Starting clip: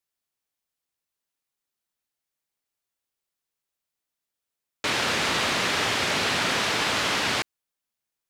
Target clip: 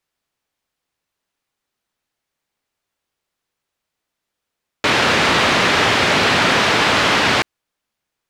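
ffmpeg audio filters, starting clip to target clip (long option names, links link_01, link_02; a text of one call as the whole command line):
ffmpeg -i in.wav -filter_complex "[0:a]lowpass=frequency=3200:poles=1,asplit=2[link_01][link_02];[link_02]asoftclip=type=hard:threshold=-22.5dB,volume=-5.5dB[link_03];[link_01][link_03]amix=inputs=2:normalize=0,volume=8dB" out.wav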